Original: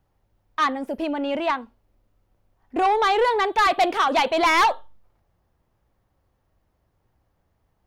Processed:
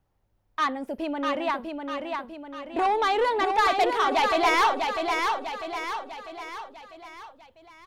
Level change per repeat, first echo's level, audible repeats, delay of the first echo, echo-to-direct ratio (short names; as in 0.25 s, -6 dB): -6.0 dB, -4.5 dB, 5, 0.648 s, -3.5 dB